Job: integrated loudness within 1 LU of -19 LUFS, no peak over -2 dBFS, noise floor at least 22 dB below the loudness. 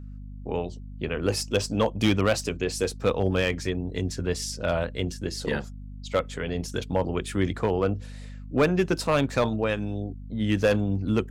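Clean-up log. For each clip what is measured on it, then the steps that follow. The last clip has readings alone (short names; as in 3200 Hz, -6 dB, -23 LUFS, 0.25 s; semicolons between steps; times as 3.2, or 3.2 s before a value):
clipped 0.4%; flat tops at -14.0 dBFS; hum 50 Hz; harmonics up to 250 Hz; hum level -37 dBFS; loudness -27.0 LUFS; peak -14.0 dBFS; loudness target -19.0 LUFS
-> clip repair -14 dBFS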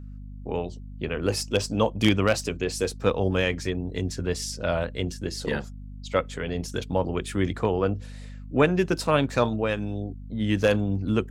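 clipped 0.0%; hum 50 Hz; harmonics up to 250 Hz; hum level -36 dBFS
-> notches 50/100/150/200/250 Hz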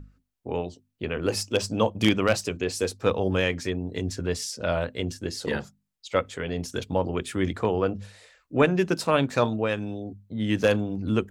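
hum none; loudness -27.0 LUFS; peak -6.0 dBFS; loudness target -19.0 LUFS
-> gain +8 dB; limiter -2 dBFS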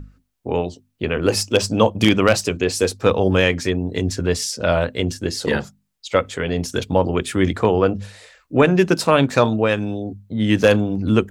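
loudness -19.5 LUFS; peak -2.0 dBFS; noise floor -67 dBFS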